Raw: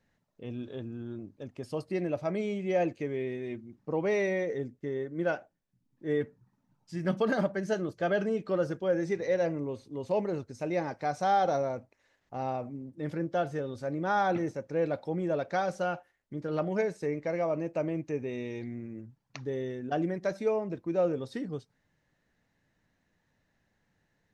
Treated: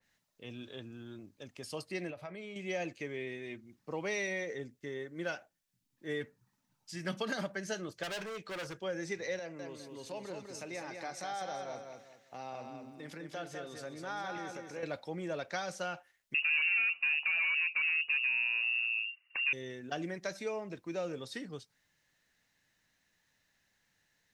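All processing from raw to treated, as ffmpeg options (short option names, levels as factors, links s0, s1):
-filter_complex "[0:a]asettb=1/sr,asplit=3[s0][s1][s2];[s0]atrim=end=2.104[s3];[s1]atrim=start=2.1:end=2.56,asetpts=PTS-STARTPTS,afade=t=in:d=0.004:c=qsin,afade=t=out:st=0.456:d=0.004:c=qsin,equalizer=f=6300:w=1.3:g=-12.5,bandreject=f=310:w=6.6,acompressor=threshold=0.0178:ratio=6:attack=3.2:release=140:knee=1:detection=peak[s4];[s2]atrim=start=2.556[s5];[s3][s4]acrossfade=d=0.004:c1=hsin:c2=qsin[s6];[s6][s5]acrossfade=d=0.004:c1=qsin:c2=hsin,asettb=1/sr,asplit=3[s7][s8][s9];[s7]atrim=end=8.034[s10];[s8]atrim=start=8.03:end=8.81,asetpts=PTS-STARTPTS,afade=t=in:d=0.004:c=qsin,afade=t=out:st=0.776:d=0.004:c=qsin,equalizer=f=250:w=3.4:g=-9.5,volume=44.7,asoftclip=hard,volume=0.0224[s11];[s9]atrim=start=8.806[s12];[s10][s11]acrossfade=d=0.004:c1=hsin:c2=qsin[s13];[s13][s12]acrossfade=d=0.004:c1=qsin:c2=hsin,asettb=1/sr,asplit=3[s14][s15][s16];[s14]atrim=end=9.394[s17];[s15]atrim=start=9.39:end=14.83,asetpts=PTS-STARTPTS,afade=t=in:d=0.004:c=qsin,afade=t=out:st=5.436:d=0.004:c=qsin,highpass=130,acompressor=threshold=0.0126:ratio=2:attack=3.2:release=140:knee=1:detection=peak,aecho=1:1:201|402|603|804:0.562|0.174|0.054|0.0168,atrim=end_sample=239904[s18];[s16]atrim=start=14.826[s19];[s17][s18]acrossfade=d=0.004:c1=hsin:c2=qsin[s20];[s20][s19]acrossfade=d=0.004:c1=qsin:c2=hsin,asettb=1/sr,asplit=3[s21][s22][s23];[s21]atrim=end=16.344[s24];[s22]atrim=start=16.34:end=19.53,asetpts=PTS-STARTPTS,afade=t=in:d=0.004:c=qsin,afade=t=out:st=3.186:d=0.004:c=qsin,acontrast=53,asoftclip=type=hard:threshold=0.0422,lowpass=f=2500:t=q:w=0.5098,lowpass=f=2500:t=q:w=0.6013,lowpass=f=2500:t=q:w=0.9,lowpass=f=2500:t=q:w=2.563,afreqshift=-2900[s25];[s23]atrim=start=19.526[s26];[s24][s25]acrossfade=d=0.004:c1=hsin:c2=qsin[s27];[s27][s26]acrossfade=d=0.004:c1=qsin:c2=hsin,tiltshelf=f=1400:g=-9,acrossover=split=260|3000[s28][s29][s30];[s29]acompressor=threshold=0.02:ratio=6[s31];[s28][s31][s30]amix=inputs=3:normalize=0,adynamicequalizer=threshold=0.00224:dfrequency=3000:dqfactor=0.7:tfrequency=3000:tqfactor=0.7:attack=5:release=100:ratio=0.375:range=2:mode=cutabove:tftype=highshelf"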